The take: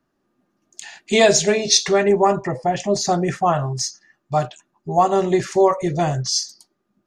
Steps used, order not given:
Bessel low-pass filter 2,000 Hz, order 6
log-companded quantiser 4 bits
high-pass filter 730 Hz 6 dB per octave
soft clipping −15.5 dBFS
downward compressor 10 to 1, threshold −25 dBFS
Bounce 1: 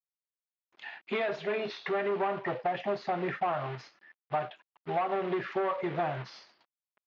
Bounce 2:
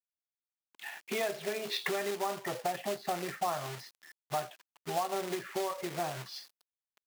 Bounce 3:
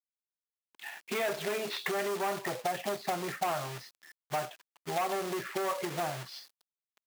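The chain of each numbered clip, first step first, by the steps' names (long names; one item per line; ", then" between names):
log-companded quantiser, then soft clipping, then high-pass filter, then downward compressor, then Bessel low-pass filter
Bessel low-pass filter, then log-companded quantiser, then downward compressor, then soft clipping, then high-pass filter
soft clipping, then Bessel low-pass filter, then downward compressor, then log-companded quantiser, then high-pass filter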